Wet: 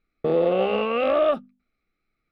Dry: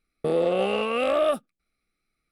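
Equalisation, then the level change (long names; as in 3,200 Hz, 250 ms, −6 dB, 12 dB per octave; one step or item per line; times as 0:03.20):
high-frequency loss of the air 230 metres
mains-hum notches 50/100/150/200/250 Hz
+3.0 dB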